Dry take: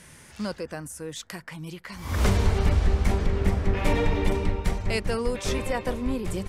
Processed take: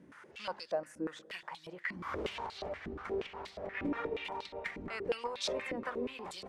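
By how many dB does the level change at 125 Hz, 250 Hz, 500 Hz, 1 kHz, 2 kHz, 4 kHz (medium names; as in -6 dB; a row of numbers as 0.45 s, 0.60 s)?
-27.0 dB, -12.5 dB, -8.5 dB, -7.5 dB, -7.0 dB, -6.5 dB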